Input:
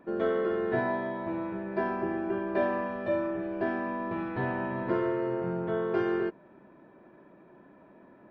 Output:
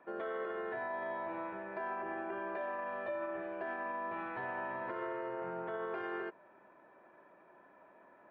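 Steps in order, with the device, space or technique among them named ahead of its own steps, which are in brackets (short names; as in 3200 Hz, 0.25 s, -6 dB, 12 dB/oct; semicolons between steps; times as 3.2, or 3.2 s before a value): DJ mixer with the lows and highs turned down (three-band isolator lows -17 dB, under 530 Hz, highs -16 dB, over 3200 Hz; limiter -31.5 dBFS, peak gain reduction 11 dB)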